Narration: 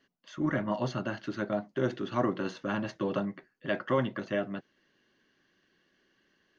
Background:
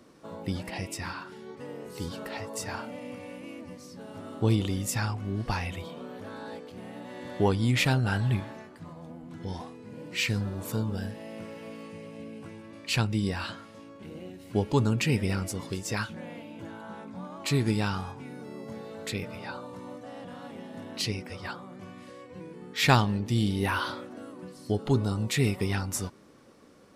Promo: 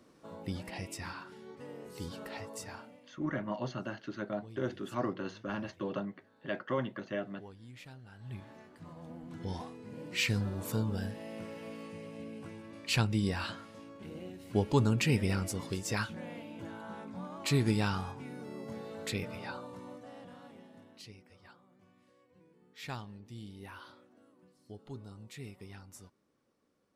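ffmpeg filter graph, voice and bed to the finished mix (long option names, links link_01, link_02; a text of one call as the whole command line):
ffmpeg -i stem1.wav -i stem2.wav -filter_complex "[0:a]adelay=2800,volume=-5.5dB[link_01];[1:a]volume=18dB,afade=type=out:start_time=2.42:duration=0.69:silence=0.0944061,afade=type=in:start_time=8.18:duration=1.01:silence=0.0630957,afade=type=out:start_time=19.34:duration=1.68:silence=0.125893[link_02];[link_01][link_02]amix=inputs=2:normalize=0" out.wav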